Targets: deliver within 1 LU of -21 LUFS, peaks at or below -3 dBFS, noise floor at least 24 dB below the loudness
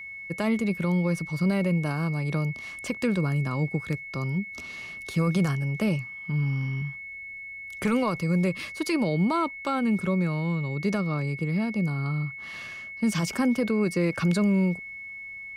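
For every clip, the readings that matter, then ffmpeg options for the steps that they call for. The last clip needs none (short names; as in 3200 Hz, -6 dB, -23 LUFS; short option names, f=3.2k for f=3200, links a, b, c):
steady tone 2200 Hz; tone level -37 dBFS; loudness -27.0 LUFS; peak -15.0 dBFS; loudness target -21.0 LUFS
-> -af "bandreject=f=2.2k:w=30"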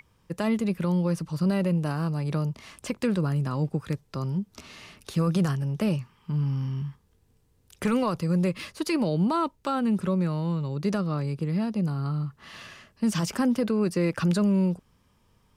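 steady tone none; loudness -27.0 LUFS; peak -15.0 dBFS; loudness target -21.0 LUFS
-> -af "volume=6dB"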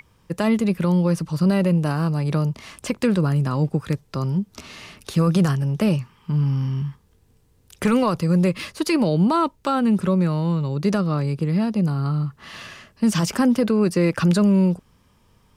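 loudness -21.0 LUFS; peak -9.0 dBFS; noise floor -59 dBFS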